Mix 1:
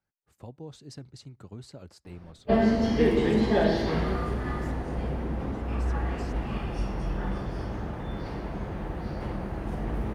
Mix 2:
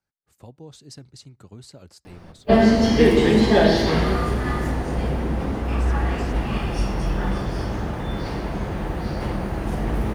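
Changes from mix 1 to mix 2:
background +7.0 dB
master: add high-shelf EQ 3,500 Hz +8 dB

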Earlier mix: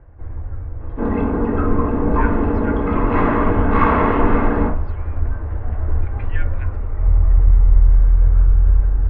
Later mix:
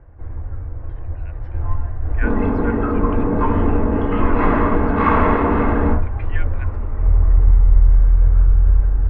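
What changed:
speech: send off
second sound: entry +1.25 s

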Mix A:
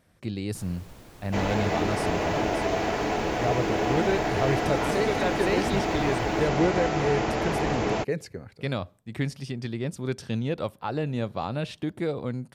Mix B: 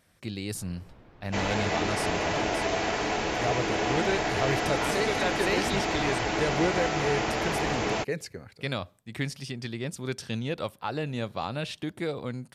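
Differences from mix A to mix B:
first sound: add head-to-tape spacing loss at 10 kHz 44 dB
master: add tilt shelving filter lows −4 dB, about 1,200 Hz

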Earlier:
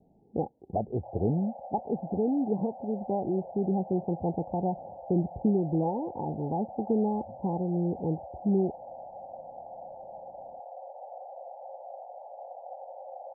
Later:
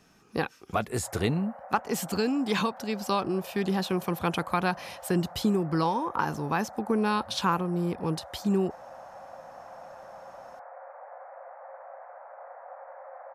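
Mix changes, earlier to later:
background: add Gaussian smoothing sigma 8.4 samples
master: remove Butterworth low-pass 840 Hz 96 dB per octave

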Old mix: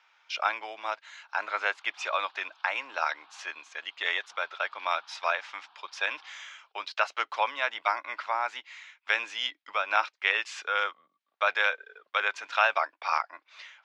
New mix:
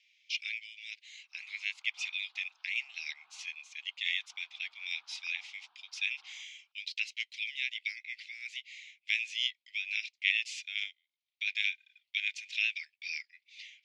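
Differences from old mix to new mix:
speech: add Butterworth high-pass 2,100 Hz 72 dB per octave
background −10.5 dB

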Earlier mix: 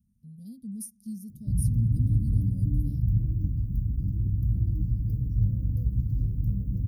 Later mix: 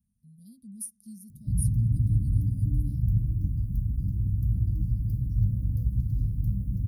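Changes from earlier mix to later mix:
speech −6.5 dB
master: add graphic EQ with 15 bands 400 Hz −9 dB, 1,000 Hz −5 dB, 4,000 Hz +4 dB, 10,000 Hz +10 dB

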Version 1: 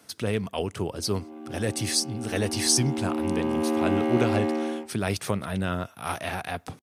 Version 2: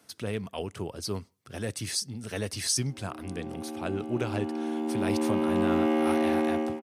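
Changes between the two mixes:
speech −5.5 dB
background: entry +1.95 s

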